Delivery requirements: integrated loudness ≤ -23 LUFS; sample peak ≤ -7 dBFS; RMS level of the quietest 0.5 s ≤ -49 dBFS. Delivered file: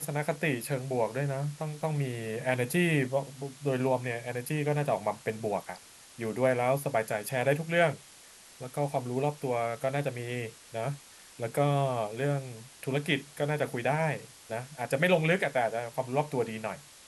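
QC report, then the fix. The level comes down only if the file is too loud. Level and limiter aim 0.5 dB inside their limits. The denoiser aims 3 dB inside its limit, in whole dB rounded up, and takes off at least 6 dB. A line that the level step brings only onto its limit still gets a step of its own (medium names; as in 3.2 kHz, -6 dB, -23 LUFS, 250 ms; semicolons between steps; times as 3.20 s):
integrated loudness -31.0 LUFS: pass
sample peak -11.0 dBFS: pass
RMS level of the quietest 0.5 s -53 dBFS: pass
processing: none needed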